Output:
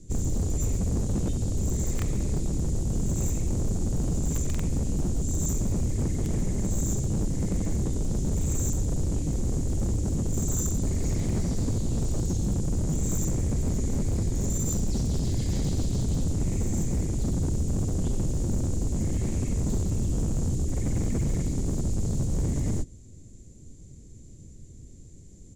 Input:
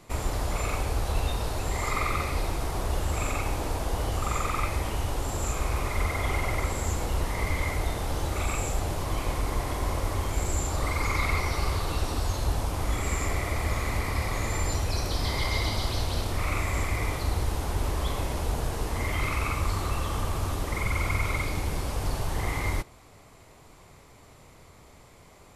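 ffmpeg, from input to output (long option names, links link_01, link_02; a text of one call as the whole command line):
ffmpeg -i in.wav -filter_complex "[0:a]asplit=4[link_01][link_02][link_03][link_04];[link_02]asetrate=22050,aresample=44100,atempo=2,volume=-7dB[link_05];[link_03]asetrate=37084,aresample=44100,atempo=1.18921,volume=-2dB[link_06];[link_04]asetrate=58866,aresample=44100,atempo=0.749154,volume=-18dB[link_07];[link_01][link_05][link_06][link_07]amix=inputs=4:normalize=0,acrossover=split=320|1100[link_08][link_09][link_10];[link_09]acrusher=bits=3:mix=0:aa=0.000001[link_11];[link_10]bandpass=frequency=7100:width_type=q:width=6.8:csg=0[link_12];[link_08][link_11][link_12]amix=inputs=3:normalize=0,aeval=exprs='0.0473*(abs(mod(val(0)/0.0473+3,4)-2)-1)':channel_layout=same,volume=6dB" out.wav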